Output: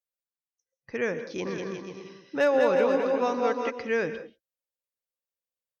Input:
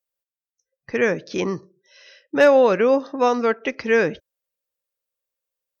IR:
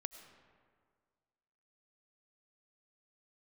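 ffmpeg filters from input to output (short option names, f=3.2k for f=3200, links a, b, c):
-filter_complex "[0:a]asplit=3[a][b][c];[a]afade=t=out:st=1.45:d=0.02[d];[b]aecho=1:1:200|360|488|590.4|672.3:0.631|0.398|0.251|0.158|0.1,afade=t=in:st=1.45:d=0.02,afade=t=out:st=3.69:d=0.02[e];[c]afade=t=in:st=3.69:d=0.02[f];[d][e][f]amix=inputs=3:normalize=0[g];[1:a]atrim=start_sample=2205,afade=t=out:st=0.2:d=0.01,atrim=end_sample=9261,asetrate=33516,aresample=44100[h];[g][h]afir=irnorm=-1:irlink=0,volume=-7dB"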